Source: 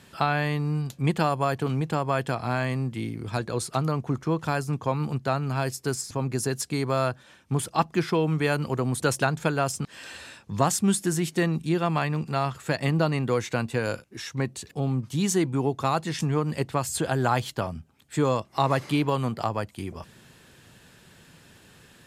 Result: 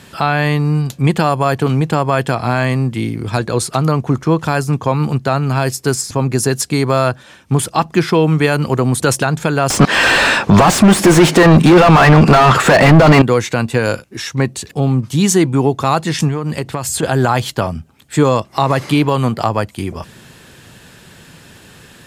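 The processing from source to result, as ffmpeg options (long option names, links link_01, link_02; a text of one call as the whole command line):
ffmpeg -i in.wav -filter_complex "[0:a]asettb=1/sr,asplit=3[link_01][link_02][link_03];[link_01]atrim=end=9.704[link_04];[link_02]atrim=start=9.7:end=13.22,asetpts=PTS-STARTPTS,afade=type=in:duration=0.004:curve=qsin,afade=type=out:start_time=3.516:duration=0.004:curve=qsin,asplit=2[link_05][link_06];[link_06]highpass=frequency=720:poles=1,volume=37dB,asoftclip=type=tanh:threshold=-7.5dB[link_07];[link_05][link_07]amix=inputs=2:normalize=0,lowpass=frequency=1100:poles=1,volume=-6dB[link_08];[link_03]atrim=start=13.216[link_09];[link_04][link_08]acrossfade=duration=0.004:curve1=hsin:curve2=qsin[link_10];[link_10][link_09]acrossfade=duration=0.004:curve1=qsin:curve2=hsin,asettb=1/sr,asplit=3[link_11][link_12][link_13];[link_11]atrim=end=16.284[link_14];[link_12]atrim=start=16.28:end=17.03,asetpts=PTS-STARTPTS,afade=type=in:duration=0.004:curve=qsin,afade=type=out:start_time=0.746:duration=0.004:curve=qsin,acompressor=threshold=-27dB:ratio=6:attack=3.2:release=140:knee=1:detection=peak[link_15];[link_13]atrim=start=17.026[link_16];[link_14][link_15]acrossfade=duration=0.004:curve1=hsin:curve2=qsin[link_17];[link_17][link_16]acrossfade=duration=0.004:curve1=qsin:curve2=hsin,alimiter=level_in=13dB:limit=-1dB:release=50:level=0:latency=1,volume=-1dB" out.wav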